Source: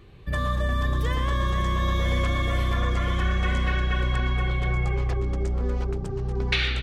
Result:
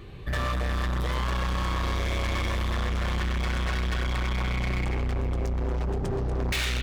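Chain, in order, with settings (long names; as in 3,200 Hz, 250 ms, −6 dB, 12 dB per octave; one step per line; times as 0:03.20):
in parallel at +0.5 dB: brickwall limiter −21 dBFS, peak gain reduction 10 dB
on the sum: hard clipping −25.5 dBFS, distortion −7 dB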